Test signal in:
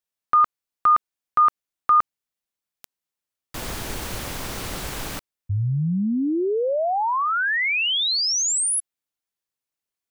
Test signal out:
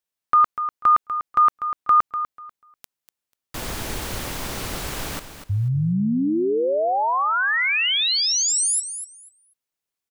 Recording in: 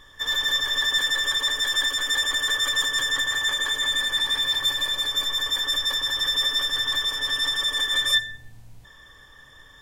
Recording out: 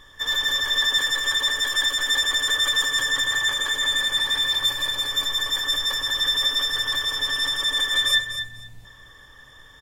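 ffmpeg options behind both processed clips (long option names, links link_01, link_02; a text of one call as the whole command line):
ffmpeg -i in.wav -af "aecho=1:1:245|490|735:0.299|0.0567|0.0108,volume=1dB" out.wav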